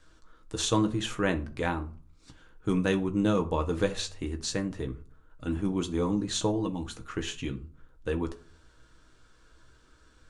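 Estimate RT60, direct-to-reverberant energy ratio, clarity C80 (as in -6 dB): 0.45 s, 4.5 dB, 21.0 dB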